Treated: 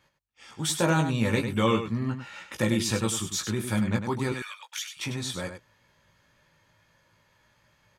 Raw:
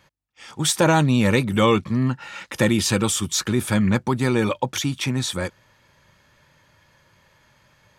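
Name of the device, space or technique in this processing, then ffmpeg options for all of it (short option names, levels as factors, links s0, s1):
slapback doubling: -filter_complex "[0:a]asettb=1/sr,asplit=3[s0][s1][s2];[s0]atrim=end=4.324[s3];[s1]atrim=start=4.32:end=4.97,asetpts=PTS-STARTPTS,afade=t=in:d=0.004:c=qsin,afade=t=out:st=0.646:d=0.004:c=qsin,highpass=f=1400:w=0.5412,highpass=f=1400:w=1.3066[s4];[s2]atrim=start=4.966[s5];[s3][s4]acrossfade=d=0.004:c1=hsin:c2=qsin[s6];[s6][s5]acrossfade=d=0.004:c1=qsin:c2=hsin,asplit=3[s7][s8][s9];[s8]adelay=18,volume=0.596[s10];[s9]adelay=100,volume=0.398[s11];[s7][s10][s11]amix=inputs=3:normalize=0,volume=0.376"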